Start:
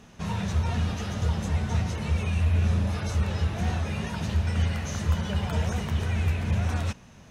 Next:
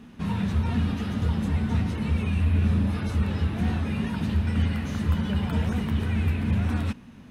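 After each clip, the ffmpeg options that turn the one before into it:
-af "equalizer=f=250:t=o:w=0.67:g=11,equalizer=f=630:t=o:w=0.67:g=-5,equalizer=f=6.3k:t=o:w=0.67:g=-11"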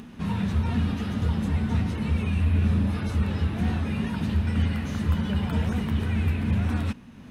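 -af "acompressor=mode=upward:threshold=-38dB:ratio=2.5"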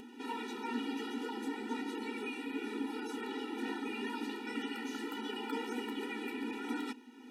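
-af "afftfilt=real='re*eq(mod(floor(b*sr/1024/250),2),1)':imag='im*eq(mod(floor(b*sr/1024/250),2),1)':win_size=1024:overlap=0.75,volume=-1.5dB"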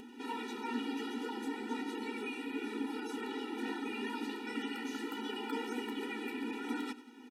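-af "aecho=1:1:94|188|282|376:0.133|0.0693|0.0361|0.0188"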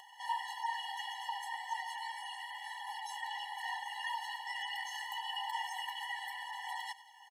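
-af "afftfilt=real='re*eq(mod(floor(b*sr/1024/560),2),1)':imag='im*eq(mod(floor(b*sr/1024/560),2),1)':win_size=1024:overlap=0.75,volume=6.5dB"

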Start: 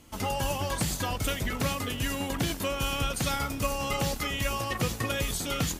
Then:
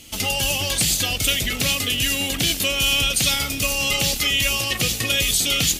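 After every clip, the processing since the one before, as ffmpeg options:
-filter_complex "[0:a]equalizer=f=980:w=7.9:g=-10.5,asplit=2[a][b];[b]alimiter=level_in=2.5dB:limit=-24dB:level=0:latency=1,volume=-2.5dB,volume=-1.5dB[c];[a][c]amix=inputs=2:normalize=0,highshelf=f=2k:t=q:w=1.5:g=10"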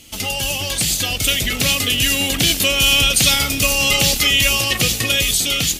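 -af "dynaudnorm=f=360:g=7:m=11.5dB"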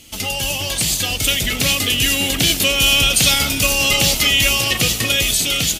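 -filter_complex "[0:a]asplit=7[a][b][c][d][e][f][g];[b]adelay=199,afreqshift=86,volume=-15dB[h];[c]adelay=398,afreqshift=172,volume=-19.4dB[i];[d]adelay=597,afreqshift=258,volume=-23.9dB[j];[e]adelay=796,afreqshift=344,volume=-28.3dB[k];[f]adelay=995,afreqshift=430,volume=-32.7dB[l];[g]adelay=1194,afreqshift=516,volume=-37.2dB[m];[a][h][i][j][k][l][m]amix=inputs=7:normalize=0"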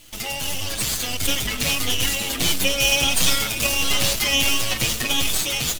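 -filter_complex "[0:a]aeval=exprs='max(val(0),0)':c=same,acrusher=bits=7:mix=0:aa=0.000001,asplit=2[a][b];[b]adelay=7.4,afreqshift=1.5[c];[a][c]amix=inputs=2:normalize=1,volume=2dB"

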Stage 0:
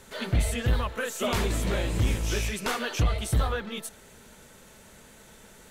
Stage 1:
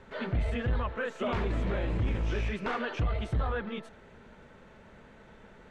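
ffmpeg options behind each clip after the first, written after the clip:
-af "lowpass=2.1k,alimiter=limit=-23.5dB:level=0:latency=1:release=12"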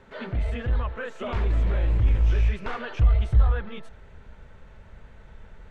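-af "asubboost=boost=7.5:cutoff=90"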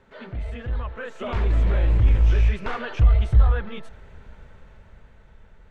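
-af "dynaudnorm=f=220:g=11:m=10.5dB,volume=-4.5dB"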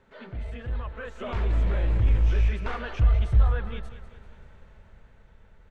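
-af "aecho=1:1:195|390|585|780|975:0.224|0.103|0.0474|0.0218|0.01,volume=-4dB"

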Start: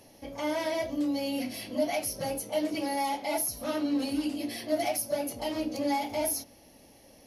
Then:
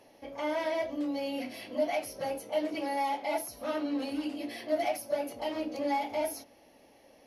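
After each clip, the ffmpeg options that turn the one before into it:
-af "bass=f=250:g=-11,treble=f=4k:g=-11"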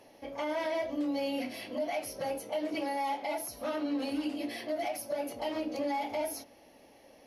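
-af "alimiter=level_in=2.5dB:limit=-24dB:level=0:latency=1:release=97,volume=-2.5dB,volume=1.5dB"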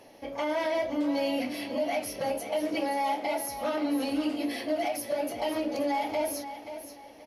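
-af "aecho=1:1:529|1058|1587:0.282|0.0817|0.0237,volume=4dB"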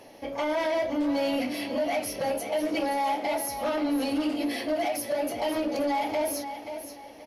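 -af "asoftclip=type=tanh:threshold=-23.5dB,volume=3.5dB"

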